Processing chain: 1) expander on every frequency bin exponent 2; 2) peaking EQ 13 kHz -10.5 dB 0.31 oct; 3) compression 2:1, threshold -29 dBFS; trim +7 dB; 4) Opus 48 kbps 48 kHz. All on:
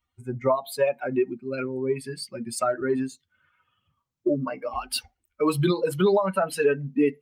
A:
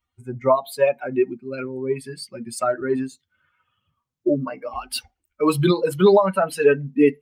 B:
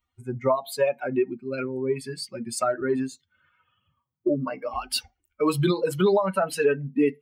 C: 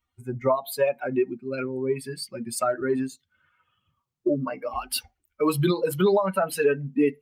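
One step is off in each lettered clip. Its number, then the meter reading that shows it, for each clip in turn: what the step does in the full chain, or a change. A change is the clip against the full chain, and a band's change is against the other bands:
3, momentary loudness spread change +5 LU; 4, 4 kHz band +1.5 dB; 2, 8 kHz band +1.5 dB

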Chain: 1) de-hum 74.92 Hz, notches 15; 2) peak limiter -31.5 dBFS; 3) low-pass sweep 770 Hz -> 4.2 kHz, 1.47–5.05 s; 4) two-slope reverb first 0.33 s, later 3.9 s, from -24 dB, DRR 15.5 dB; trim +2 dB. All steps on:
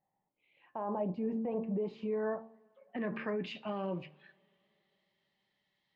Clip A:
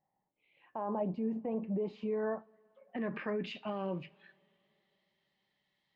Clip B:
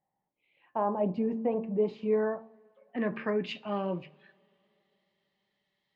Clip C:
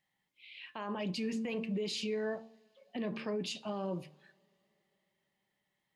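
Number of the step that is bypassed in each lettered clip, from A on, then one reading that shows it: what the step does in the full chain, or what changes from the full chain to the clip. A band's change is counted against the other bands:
1, momentary loudness spread change -1 LU; 2, mean gain reduction 3.0 dB; 3, 4 kHz band +11.0 dB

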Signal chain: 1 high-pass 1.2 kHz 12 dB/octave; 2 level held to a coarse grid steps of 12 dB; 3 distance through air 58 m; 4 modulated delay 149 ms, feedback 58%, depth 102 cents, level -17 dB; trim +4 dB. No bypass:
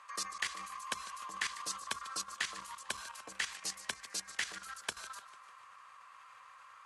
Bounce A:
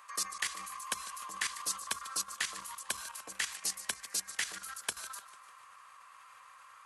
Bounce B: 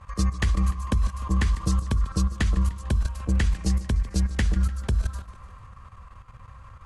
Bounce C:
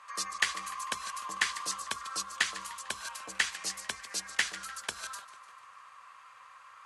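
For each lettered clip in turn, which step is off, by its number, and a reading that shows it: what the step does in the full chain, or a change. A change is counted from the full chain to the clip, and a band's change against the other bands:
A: 3, 8 kHz band +5.5 dB; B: 1, 125 Hz band +39.0 dB; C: 2, momentary loudness spread change +3 LU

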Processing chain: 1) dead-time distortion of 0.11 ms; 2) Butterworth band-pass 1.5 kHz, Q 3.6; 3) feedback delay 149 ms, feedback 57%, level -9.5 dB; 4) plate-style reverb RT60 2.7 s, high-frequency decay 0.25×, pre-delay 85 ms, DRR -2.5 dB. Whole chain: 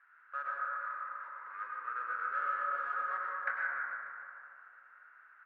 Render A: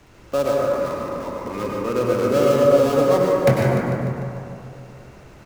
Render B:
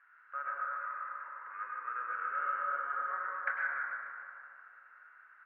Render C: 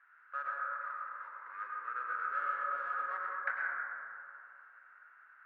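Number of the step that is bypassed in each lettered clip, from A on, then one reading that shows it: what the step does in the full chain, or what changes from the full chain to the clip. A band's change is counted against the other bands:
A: 2, momentary loudness spread change -2 LU; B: 1, distortion -18 dB; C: 3, momentary loudness spread change +3 LU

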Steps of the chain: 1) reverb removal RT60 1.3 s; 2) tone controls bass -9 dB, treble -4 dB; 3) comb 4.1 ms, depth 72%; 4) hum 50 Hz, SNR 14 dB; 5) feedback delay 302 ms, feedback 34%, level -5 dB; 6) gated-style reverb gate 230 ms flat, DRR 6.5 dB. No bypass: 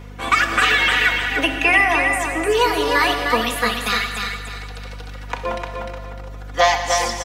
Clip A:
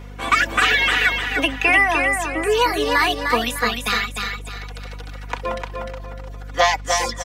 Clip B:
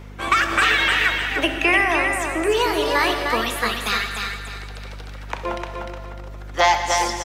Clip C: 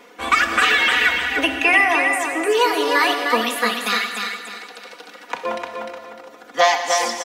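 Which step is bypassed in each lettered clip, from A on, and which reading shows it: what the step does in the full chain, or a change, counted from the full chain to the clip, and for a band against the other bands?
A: 6, echo-to-direct -2.0 dB to -4.5 dB; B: 3, loudness change -2.0 LU; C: 4, momentary loudness spread change -1 LU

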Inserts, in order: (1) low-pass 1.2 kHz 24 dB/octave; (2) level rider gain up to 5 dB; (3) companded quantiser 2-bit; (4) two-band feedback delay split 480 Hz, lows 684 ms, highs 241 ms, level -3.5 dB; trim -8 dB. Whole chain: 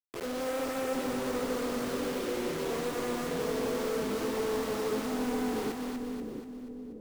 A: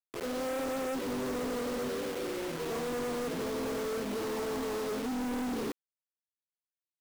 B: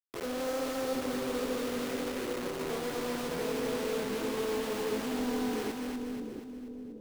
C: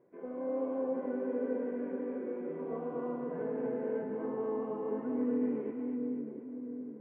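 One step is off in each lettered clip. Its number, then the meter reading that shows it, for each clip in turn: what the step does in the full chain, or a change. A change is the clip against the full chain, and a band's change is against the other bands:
4, echo-to-direct -2.0 dB to none; 2, 4 kHz band +1.5 dB; 3, distortion -5 dB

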